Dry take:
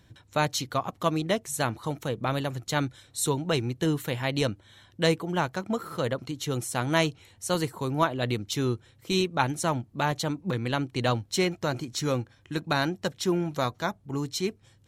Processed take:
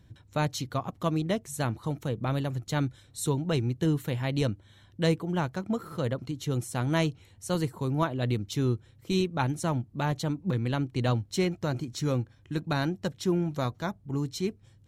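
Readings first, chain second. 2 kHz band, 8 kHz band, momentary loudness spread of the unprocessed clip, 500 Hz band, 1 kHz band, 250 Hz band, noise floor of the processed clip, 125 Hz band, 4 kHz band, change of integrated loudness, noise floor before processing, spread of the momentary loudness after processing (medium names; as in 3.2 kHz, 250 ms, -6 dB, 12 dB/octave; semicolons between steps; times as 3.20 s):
-5.5 dB, -6.0 dB, 6 LU, -3.0 dB, -5.0 dB, 0.0 dB, -58 dBFS, +2.5 dB, -6.0 dB, -1.5 dB, -60 dBFS, 5 LU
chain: bass shelf 320 Hz +10 dB; trim -6 dB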